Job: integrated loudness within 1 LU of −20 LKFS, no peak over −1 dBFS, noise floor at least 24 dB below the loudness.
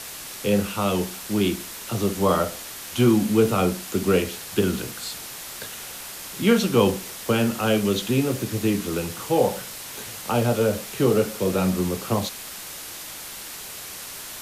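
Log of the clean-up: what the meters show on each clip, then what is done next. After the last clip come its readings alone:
background noise floor −37 dBFS; target noise floor −49 dBFS; integrated loudness −24.5 LKFS; sample peak −5.5 dBFS; target loudness −20.0 LKFS
→ broadband denoise 12 dB, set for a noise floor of −37 dBFS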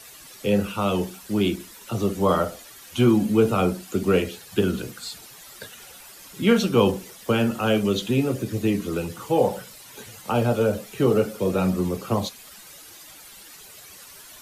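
background noise floor −46 dBFS; target noise floor −48 dBFS
→ broadband denoise 6 dB, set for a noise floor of −46 dBFS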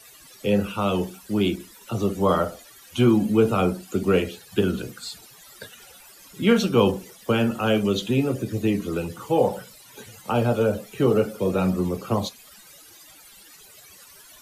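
background noise floor −49 dBFS; integrated loudness −23.5 LKFS; sample peak −5.5 dBFS; target loudness −20.0 LKFS
→ level +3.5 dB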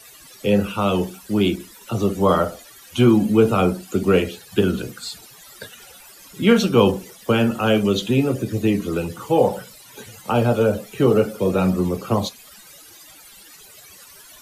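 integrated loudness −20.0 LKFS; sample peak −2.0 dBFS; background noise floor −46 dBFS

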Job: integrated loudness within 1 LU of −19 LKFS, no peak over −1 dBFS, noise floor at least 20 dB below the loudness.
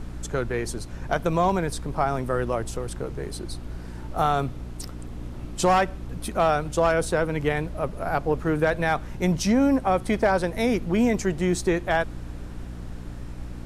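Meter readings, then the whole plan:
mains hum 60 Hz; hum harmonics up to 300 Hz; level of the hum −35 dBFS; background noise floor −37 dBFS; target noise floor −45 dBFS; integrated loudness −25.0 LKFS; sample peak −9.0 dBFS; target loudness −19.0 LKFS
→ mains-hum notches 60/120/180/240/300 Hz
noise reduction from a noise print 8 dB
level +6 dB

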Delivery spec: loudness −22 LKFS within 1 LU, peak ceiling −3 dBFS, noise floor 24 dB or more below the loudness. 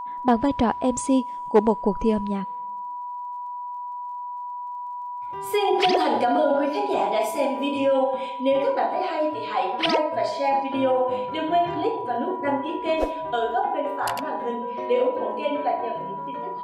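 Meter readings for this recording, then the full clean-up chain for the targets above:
crackle rate 28 per second; interfering tone 980 Hz; level of the tone −30 dBFS; integrated loudness −24.5 LKFS; sample peak −7.5 dBFS; target loudness −22.0 LKFS
→ click removal
notch filter 980 Hz, Q 30
level +2.5 dB

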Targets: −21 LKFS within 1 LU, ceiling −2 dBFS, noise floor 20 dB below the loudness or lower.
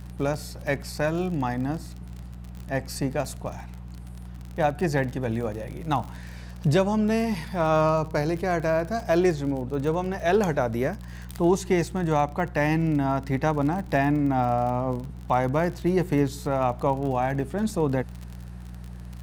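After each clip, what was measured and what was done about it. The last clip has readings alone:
crackle rate 40 per second; mains hum 60 Hz; hum harmonics up to 180 Hz; level of the hum −37 dBFS; integrated loudness −25.5 LKFS; sample peak −10.0 dBFS; target loudness −21.0 LKFS
→ click removal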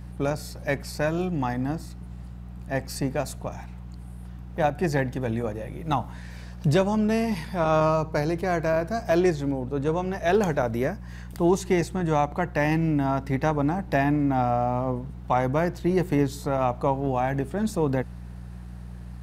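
crackle rate 0.31 per second; mains hum 60 Hz; hum harmonics up to 180 Hz; level of the hum −37 dBFS
→ hum removal 60 Hz, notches 3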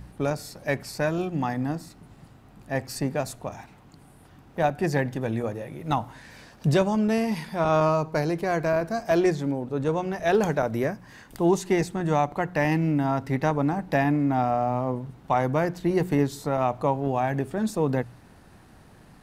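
mains hum none found; integrated loudness −26.0 LKFS; sample peak −10.0 dBFS; target loudness −21.0 LKFS
→ level +5 dB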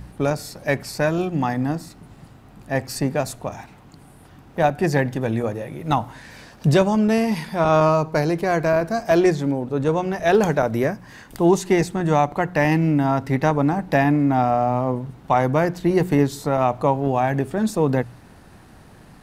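integrated loudness −21.0 LKFS; sample peak −5.0 dBFS; background noise floor −47 dBFS

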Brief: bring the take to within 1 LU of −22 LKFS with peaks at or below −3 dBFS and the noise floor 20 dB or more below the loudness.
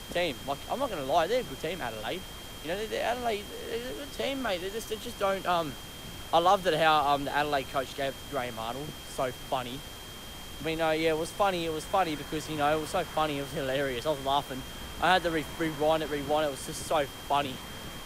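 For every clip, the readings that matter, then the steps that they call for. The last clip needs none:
interfering tone 3,200 Hz; level of the tone −47 dBFS; background noise floor −43 dBFS; target noise floor −50 dBFS; integrated loudness −30.0 LKFS; sample peak −11.5 dBFS; target loudness −22.0 LKFS
→ notch filter 3,200 Hz, Q 30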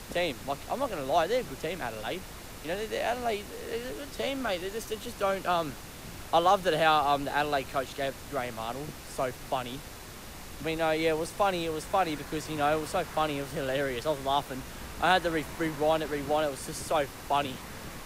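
interfering tone none found; background noise floor −44 dBFS; target noise floor −50 dBFS
→ noise reduction from a noise print 6 dB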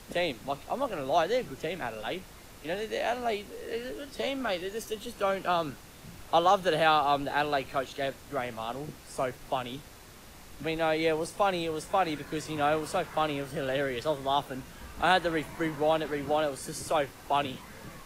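background noise floor −50 dBFS; target noise floor −51 dBFS
→ noise reduction from a noise print 6 dB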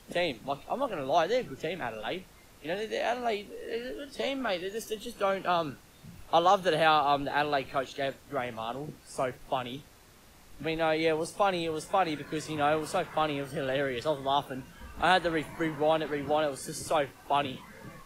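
background noise floor −55 dBFS; integrated loudness −30.5 LKFS; sample peak −12.0 dBFS; target loudness −22.0 LKFS
→ level +8.5 dB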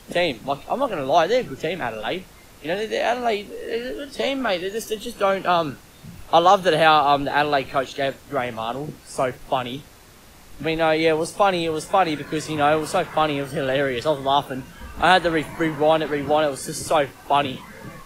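integrated loudness −22.0 LKFS; sample peak −3.5 dBFS; background noise floor −47 dBFS

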